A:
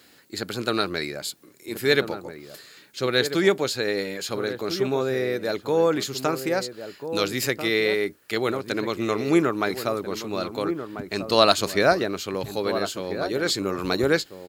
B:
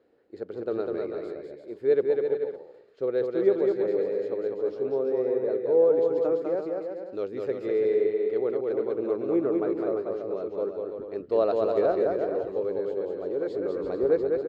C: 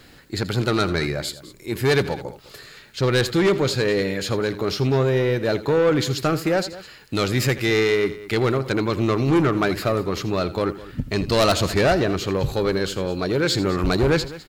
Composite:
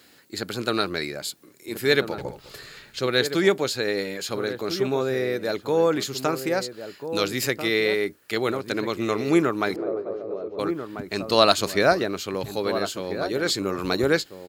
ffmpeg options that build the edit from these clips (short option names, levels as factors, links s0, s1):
-filter_complex "[0:a]asplit=3[s0][s1][s2];[s0]atrim=end=2.182[s3];[2:a]atrim=start=2.178:end=2.992[s4];[s1]atrim=start=2.988:end=9.762[s5];[1:a]atrim=start=9.758:end=10.592[s6];[s2]atrim=start=10.588[s7];[s3][s4]acrossfade=d=0.004:c1=hsin:c2=hsin[s8];[s8][s5]acrossfade=d=0.004:c1=hsin:c2=hsin[s9];[s9][s6]acrossfade=d=0.004:c1=hsin:c2=hsin[s10];[s10][s7]acrossfade=d=0.004:c1=hsin:c2=hsin"